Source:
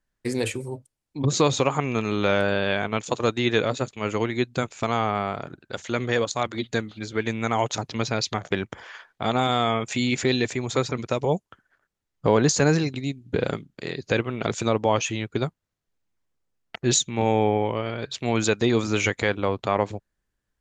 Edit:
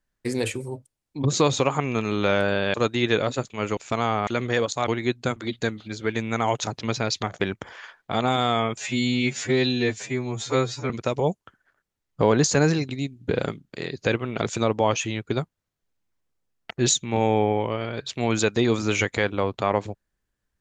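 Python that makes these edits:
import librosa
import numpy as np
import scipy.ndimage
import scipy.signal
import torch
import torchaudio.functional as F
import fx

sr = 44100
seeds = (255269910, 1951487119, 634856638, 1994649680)

y = fx.edit(x, sr, fx.cut(start_s=2.74, length_s=0.43),
    fx.move(start_s=4.2, length_s=0.48, to_s=6.47),
    fx.cut(start_s=5.18, length_s=0.68),
    fx.stretch_span(start_s=9.89, length_s=1.06, factor=2.0), tone=tone)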